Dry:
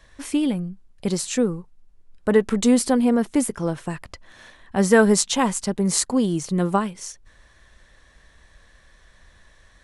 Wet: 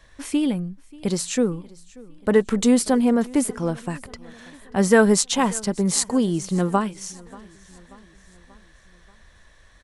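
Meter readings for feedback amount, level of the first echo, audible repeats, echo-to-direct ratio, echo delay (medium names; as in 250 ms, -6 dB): 55%, -23.0 dB, 3, -21.5 dB, 585 ms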